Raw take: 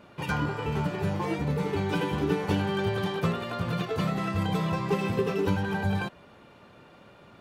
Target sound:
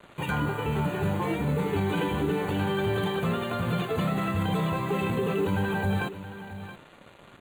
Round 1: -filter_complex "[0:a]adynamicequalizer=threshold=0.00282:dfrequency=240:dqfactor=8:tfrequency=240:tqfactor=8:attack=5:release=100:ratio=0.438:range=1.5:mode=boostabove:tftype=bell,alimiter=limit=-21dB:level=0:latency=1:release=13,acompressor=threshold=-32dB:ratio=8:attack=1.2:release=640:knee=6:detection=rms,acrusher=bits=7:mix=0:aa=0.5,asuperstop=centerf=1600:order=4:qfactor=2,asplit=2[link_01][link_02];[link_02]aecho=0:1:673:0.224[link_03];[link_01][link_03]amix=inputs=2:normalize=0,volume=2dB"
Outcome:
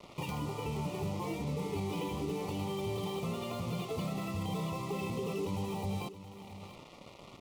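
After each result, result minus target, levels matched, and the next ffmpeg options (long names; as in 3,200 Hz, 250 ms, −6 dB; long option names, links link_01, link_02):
downward compressor: peak gain reduction +9.5 dB; 2,000 Hz band −5.5 dB
-filter_complex "[0:a]adynamicequalizer=threshold=0.00282:dfrequency=240:dqfactor=8:tfrequency=240:tqfactor=8:attack=5:release=100:ratio=0.438:range=1.5:mode=boostabove:tftype=bell,alimiter=limit=-21dB:level=0:latency=1:release=13,acrusher=bits=7:mix=0:aa=0.5,asuperstop=centerf=1600:order=4:qfactor=2,asplit=2[link_01][link_02];[link_02]aecho=0:1:673:0.224[link_03];[link_01][link_03]amix=inputs=2:normalize=0,volume=2dB"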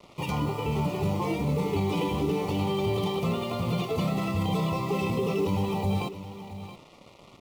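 2,000 Hz band −6.0 dB
-filter_complex "[0:a]adynamicequalizer=threshold=0.00282:dfrequency=240:dqfactor=8:tfrequency=240:tqfactor=8:attack=5:release=100:ratio=0.438:range=1.5:mode=boostabove:tftype=bell,alimiter=limit=-21dB:level=0:latency=1:release=13,acrusher=bits=7:mix=0:aa=0.5,asuperstop=centerf=5300:order=4:qfactor=2,asplit=2[link_01][link_02];[link_02]aecho=0:1:673:0.224[link_03];[link_01][link_03]amix=inputs=2:normalize=0,volume=2dB"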